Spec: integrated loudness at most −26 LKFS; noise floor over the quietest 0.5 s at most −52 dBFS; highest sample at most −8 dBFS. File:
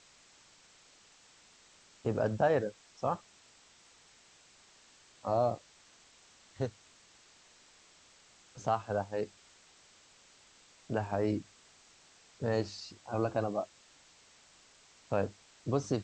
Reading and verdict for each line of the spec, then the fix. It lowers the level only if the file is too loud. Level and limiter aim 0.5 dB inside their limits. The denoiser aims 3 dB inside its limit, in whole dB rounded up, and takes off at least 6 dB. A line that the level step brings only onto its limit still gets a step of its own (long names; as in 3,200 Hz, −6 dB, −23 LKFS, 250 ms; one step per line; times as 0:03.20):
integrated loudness −35.0 LKFS: in spec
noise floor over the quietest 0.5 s −62 dBFS: in spec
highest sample −16.0 dBFS: in spec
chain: no processing needed